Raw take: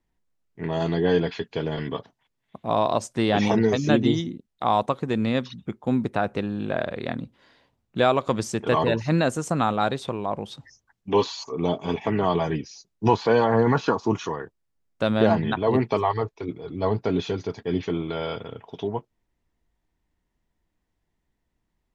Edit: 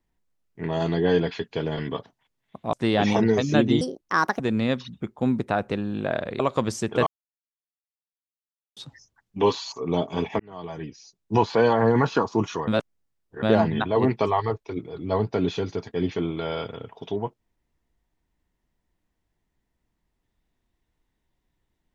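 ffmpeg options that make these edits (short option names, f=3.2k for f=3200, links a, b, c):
-filter_complex "[0:a]asplit=10[a][b][c][d][e][f][g][h][i][j];[a]atrim=end=2.732[k];[b]atrim=start=3.078:end=4.164[l];[c]atrim=start=4.16:end=5.05,asetpts=PTS-STARTPTS,asetrate=67032,aresample=44100[m];[d]atrim=start=5.046:end=7.052[n];[e]atrim=start=8.108:end=8.78,asetpts=PTS-STARTPTS,afade=t=out:st=0.668:d=0.004:c=hsin[o];[f]atrim=start=8.78:end=10.48,asetpts=PTS-STARTPTS,volume=0[p];[g]atrim=start=10.48:end=12.11,asetpts=PTS-STARTPTS,afade=t=in:d=0.004:c=hsin,afade=t=out:st=1.626:d=0.004:c=hsin[q];[h]atrim=start=12.11:end=14.392,asetpts=PTS-STARTPTS,afade=t=in:d=1.11[r];[i]atrim=start=14.388:end=15.142,asetpts=PTS-STARTPTS,areverse[s];[j]atrim=start=15.138[t];[k][l]acrossfade=d=0.004:c1=hsin:c2=hsin[u];[u][m]acrossfade=d=0.004:c1=hsin:c2=hsin[v];[v][n]acrossfade=d=0.004:c1=hsin:c2=hsin[w];[o][p][q][r]concat=n=4:v=0:a=1[x];[w][x]acrossfade=d=0.004:c1=hsin:c2=hsin[y];[y][s]acrossfade=d=0.004:c1=hsin:c2=hsin[z];[z][t]acrossfade=d=0.004:c1=hsin:c2=hsin"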